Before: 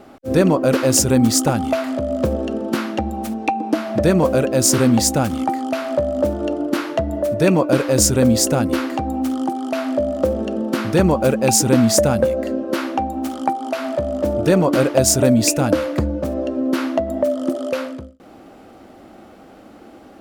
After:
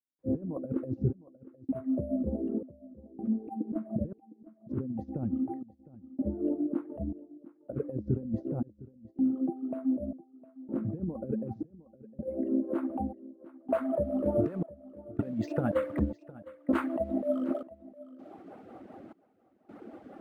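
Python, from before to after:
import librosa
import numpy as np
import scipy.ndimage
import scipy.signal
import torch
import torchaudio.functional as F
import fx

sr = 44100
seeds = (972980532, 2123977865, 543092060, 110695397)

y = scipy.signal.sosfilt(scipy.signal.butter(2, 110.0, 'highpass', fs=sr, output='sos'), x)
y = fx.dereverb_blind(y, sr, rt60_s=1.2)
y = scipy.signal.sosfilt(scipy.signal.butter(2, 10000.0, 'lowpass', fs=sr, output='sos'), y)
y = fx.over_compress(y, sr, threshold_db=-21.0, ratio=-0.5)
y = fx.rotary(y, sr, hz=5.0)
y = fx.dmg_noise_colour(y, sr, seeds[0], colour='blue', level_db=-47.0)
y = fx.filter_sweep_lowpass(y, sr, from_hz=340.0, to_hz=1600.0, start_s=11.89, end_s=14.65, q=0.71)
y = fx.step_gate(y, sr, bpm=80, pattern='.xxxxx..', floor_db=-60.0, edge_ms=4.5)
y = y + 10.0 ** (-19.0 / 20.0) * np.pad(y, (int(709 * sr / 1000.0), 0))[:len(y)]
y = np.interp(np.arange(len(y)), np.arange(len(y))[::4], y[::4])
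y = y * librosa.db_to_amplitude(-3.5)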